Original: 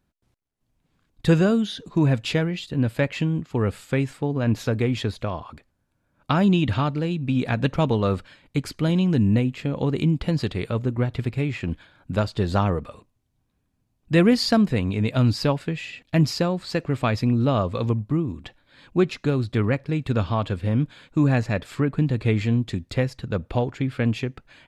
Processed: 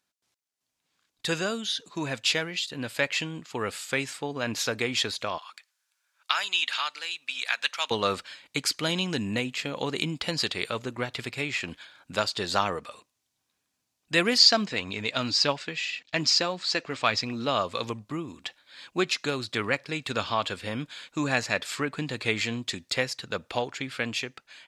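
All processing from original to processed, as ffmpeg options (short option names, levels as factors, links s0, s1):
-filter_complex "[0:a]asettb=1/sr,asplit=3[s0][s1][s2];[s0]atrim=end=5.384[s3];[s1]atrim=start=5.38:end=7.91,asetpts=PTS-STARTPTS,afade=t=in:d=0.004:c=qsin,afade=t=out:st=2.526:d=0.004:c=qsin,highpass=1400,deesser=0.6[s4];[s2]atrim=start=7.906[s5];[s3][s4]acrossfade=d=0.004:c1=hsin:c2=qsin[s6];[s6][s5]acrossfade=d=0.004:c1=qsin:c2=hsin,asettb=1/sr,asplit=3[s7][s8][s9];[s7]atrim=end=14.384[s10];[s8]atrim=start=14.38:end=17.48,asetpts=PTS-STARTPTS,afade=t=in:d=0.004:c=qsin,afade=t=out:st=3.096:d=0.004:c=qsin,lowpass=f=7000:w=0.5412,lowpass=f=7000:w=1.3066,aphaser=in_gain=1:out_gain=1:delay=4.9:decay=0.26:speed=1.8:type=triangular[s11];[s9]atrim=start=17.476[s12];[s10][s11]acrossfade=d=0.004:c1=hsin:c2=qsin[s13];[s13][s12]acrossfade=d=0.004:c1=qsin:c2=hsin,equalizer=f=5900:t=o:w=1.5:g=6.5,dynaudnorm=f=880:g=5:m=2.11,highpass=f=1400:p=1"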